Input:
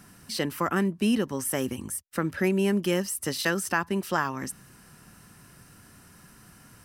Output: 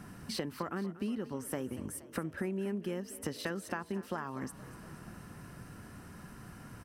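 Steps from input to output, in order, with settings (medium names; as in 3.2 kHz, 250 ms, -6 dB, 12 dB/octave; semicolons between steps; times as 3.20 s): treble shelf 2.4 kHz -12 dB; compression 6:1, threshold -40 dBFS, peak gain reduction 17.5 dB; frequency-shifting echo 237 ms, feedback 64%, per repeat +31 Hz, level -16.5 dB; trim +5 dB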